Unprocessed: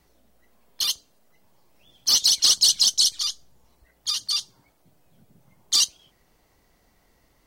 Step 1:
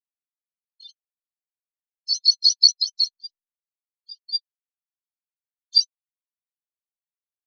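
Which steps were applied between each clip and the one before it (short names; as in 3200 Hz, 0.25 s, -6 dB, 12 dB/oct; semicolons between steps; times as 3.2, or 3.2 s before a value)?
spectral expander 4:1; gain +4 dB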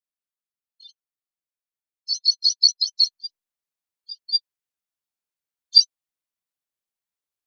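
vocal rider 0.5 s; gain +1 dB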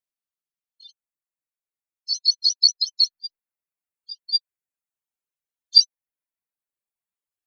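reverb removal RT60 1.5 s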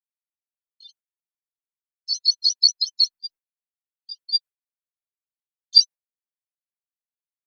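gate with hold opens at -46 dBFS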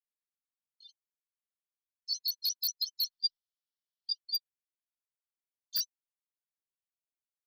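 wavefolder -15 dBFS; spectral gain 3.12–4.13, 2900–5800 Hz +12 dB; gain -9 dB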